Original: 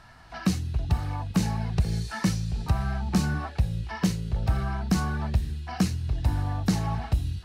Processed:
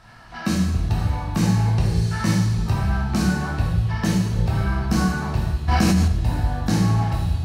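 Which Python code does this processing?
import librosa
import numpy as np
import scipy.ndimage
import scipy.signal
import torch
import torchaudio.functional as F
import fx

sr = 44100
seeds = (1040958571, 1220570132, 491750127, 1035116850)

y = fx.rev_plate(x, sr, seeds[0], rt60_s=1.3, hf_ratio=0.75, predelay_ms=0, drr_db=-5.0)
y = fx.env_flatten(y, sr, amount_pct=100, at=(5.68, 6.08))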